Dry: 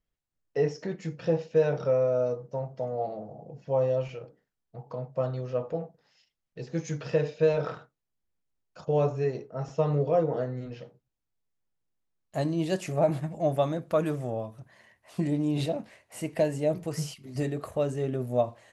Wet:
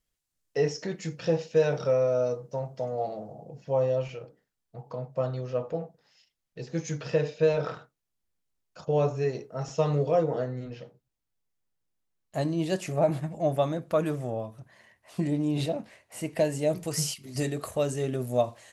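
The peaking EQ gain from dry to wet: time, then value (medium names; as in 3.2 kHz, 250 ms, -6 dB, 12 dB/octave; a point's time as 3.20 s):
peaking EQ 9.2 kHz 2.8 oct
3.18 s +10.5 dB
3.85 s +4 dB
8.94 s +4 dB
9.86 s +13.5 dB
10.70 s +1.5 dB
16.21 s +1.5 dB
16.85 s +11.5 dB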